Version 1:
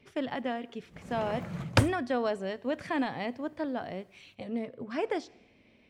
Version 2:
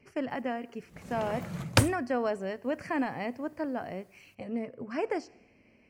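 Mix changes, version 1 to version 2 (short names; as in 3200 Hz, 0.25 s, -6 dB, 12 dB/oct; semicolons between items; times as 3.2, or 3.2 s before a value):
speech: add Butterworth band-stop 3600 Hz, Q 2.3; background: add high shelf 6000 Hz +11.5 dB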